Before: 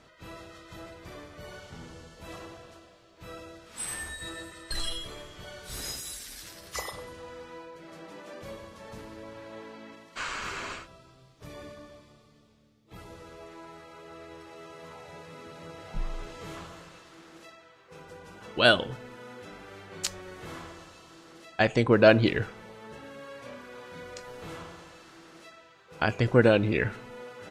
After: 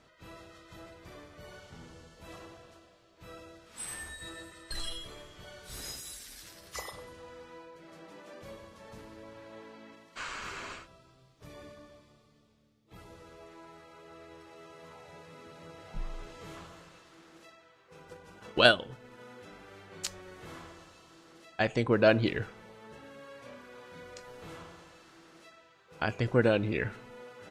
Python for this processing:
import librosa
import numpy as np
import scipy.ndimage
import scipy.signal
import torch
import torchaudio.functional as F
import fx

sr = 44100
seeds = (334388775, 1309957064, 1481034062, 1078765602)

y = fx.transient(x, sr, attack_db=8, sustain_db=-4, at=(18.05, 19.24))
y = y * 10.0 ** (-5.0 / 20.0)